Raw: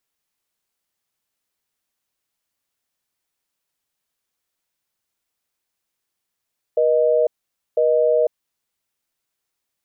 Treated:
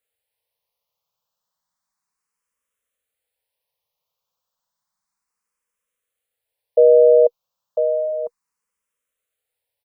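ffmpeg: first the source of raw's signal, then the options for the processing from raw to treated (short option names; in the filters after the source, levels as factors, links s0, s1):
-f lavfi -i "aevalsrc='0.15*(sin(2*PI*480*t)+sin(2*PI*620*t))*clip(min(mod(t,1),0.5-mod(t,1))/0.005,0,1)':d=1.69:s=44100"
-filter_complex "[0:a]firequalizer=gain_entry='entry(200,0);entry(340,-14);entry(480,9);entry(690,1);entry(1000,8);entry(1500,0)':delay=0.05:min_phase=1,asplit=2[s0][s1];[s1]afreqshift=0.32[s2];[s0][s2]amix=inputs=2:normalize=1"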